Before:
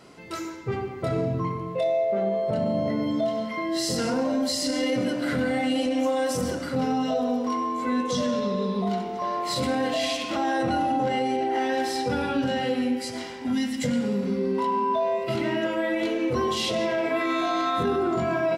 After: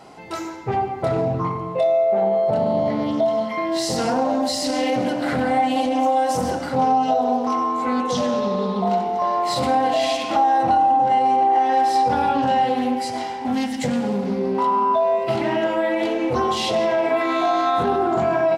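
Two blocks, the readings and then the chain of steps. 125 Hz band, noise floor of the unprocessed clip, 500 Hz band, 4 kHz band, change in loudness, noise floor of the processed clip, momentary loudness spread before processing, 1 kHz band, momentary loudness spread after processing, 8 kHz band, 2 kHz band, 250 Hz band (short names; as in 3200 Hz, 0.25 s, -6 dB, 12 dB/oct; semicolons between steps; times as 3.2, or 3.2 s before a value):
+2.0 dB, -34 dBFS, +5.0 dB, +1.5 dB, +5.5 dB, -29 dBFS, 4 LU, +10.0 dB, 6 LU, +1.5 dB, +2.0 dB, +2.0 dB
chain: bell 800 Hz +14.5 dB 0.44 oct; compressor, threshold -17 dBFS, peak gain reduction 7 dB; Doppler distortion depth 0.15 ms; gain +2.5 dB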